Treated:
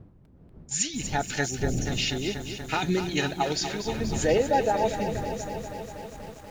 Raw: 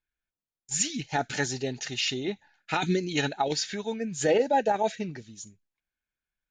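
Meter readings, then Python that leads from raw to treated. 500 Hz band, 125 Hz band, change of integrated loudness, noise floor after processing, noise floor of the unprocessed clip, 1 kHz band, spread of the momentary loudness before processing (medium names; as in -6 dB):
+1.0 dB, +5.0 dB, +0.5 dB, -53 dBFS, under -85 dBFS, +1.0 dB, 13 LU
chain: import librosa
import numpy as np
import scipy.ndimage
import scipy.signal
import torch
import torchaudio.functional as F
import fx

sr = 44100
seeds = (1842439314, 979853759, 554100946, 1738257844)

y = fx.dmg_wind(x, sr, seeds[0], corner_hz=180.0, level_db=-38.0)
y = fx.spec_erase(y, sr, start_s=1.49, length_s=0.38, low_hz=820.0, high_hz=5300.0)
y = fx.echo_crushed(y, sr, ms=241, feedback_pct=80, bits=8, wet_db=-9.5)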